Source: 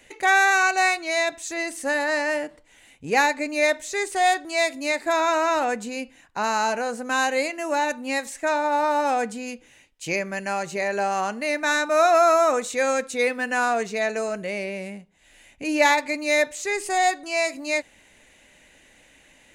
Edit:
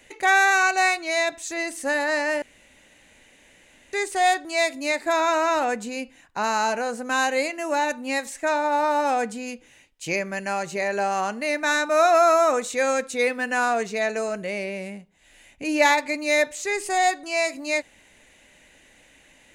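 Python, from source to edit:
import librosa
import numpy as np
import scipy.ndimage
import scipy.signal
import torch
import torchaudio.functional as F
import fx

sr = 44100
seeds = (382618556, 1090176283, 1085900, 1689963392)

y = fx.edit(x, sr, fx.room_tone_fill(start_s=2.42, length_s=1.51), tone=tone)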